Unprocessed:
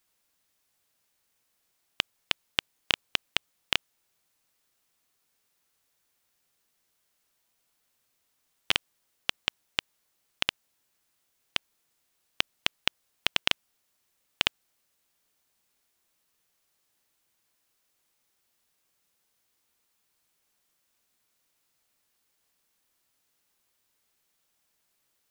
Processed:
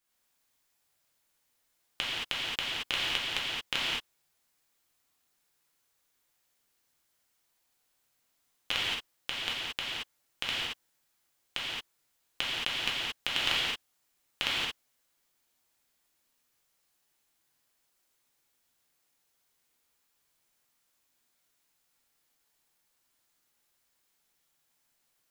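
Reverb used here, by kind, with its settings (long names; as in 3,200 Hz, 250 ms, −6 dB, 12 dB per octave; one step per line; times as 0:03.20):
reverb whose tail is shaped and stops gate 250 ms flat, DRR −7.5 dB
level −8.5 dB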